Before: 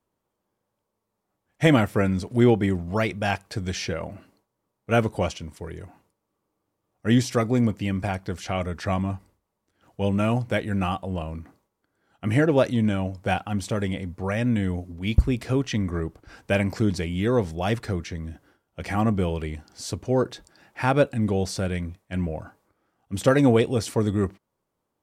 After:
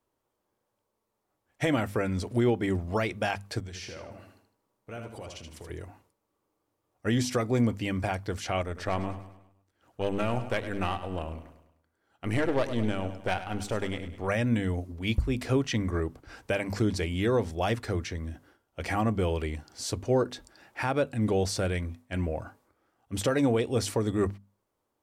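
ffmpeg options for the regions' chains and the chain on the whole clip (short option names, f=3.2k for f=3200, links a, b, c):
-filter_complex "[0:a]asettb=1/sr,asplit=3[a][b][c];[a]atrim=end=3.604[d];[b]atrim=start=3.6:end=5.7,asetpts=PTS-STARTPTS,afade=t=in:d=0.004:c=qsin,afade=t=out:st=2.096:d=0.004:c=qsin,acompressor=threshold=-40dB:ratio=4:attack=3.2:release=140:knee=1:detection=peak,aecho=1:1:78|156|234|312:0.531|0.186|0.065|0.0228,atrim=end_sample=92610[e];[c]atrim=start=5.696[f];[d][e]acrossfade=d=0.004:c1=hsin:c2=qsin[g];[g][f]acrossfade=d=0.004:c1=qsin:c2=hsin,asettb=1/sr,asplit=3[h][i][j];[h]atrim=end=8.614[k];[i]atrim=start=8.61:end=14.28,asetpts=PTS-STARTPTS,afade=t=in:d=0.004:c=qsin,afade=t=out:st=5.666:d=0.004:c=qsin,aeval=exprs='(tanh(7.94*val(0)+0.75)-tanh(0.75))/7.94':c=same,aecho=1:1:102|204|306|408|510:0.237|0.114|0.0546|0.0262|0.0126,atrim=end_sample=250047[l];[j]atrim=start=14.276[m];[k][l]acrossfade=d=0.004:c1=hsin:c2=qsin[n];[n][m]acrossfade=d=0.004:c1=qsin:c2=hsin,equalizer=f=170:t=o:w=0.52:g=-7.5,bandreject=f=50:t=h:w=6,bandreject=f=100:t=h:w=6,bandreject=f=150:t=h:w=6,bandreject=f=200:t=h:w=6,bandreject=f=250:t=h:w=6,alimiter=limit=-16dB:level=0:latency=1:release=236"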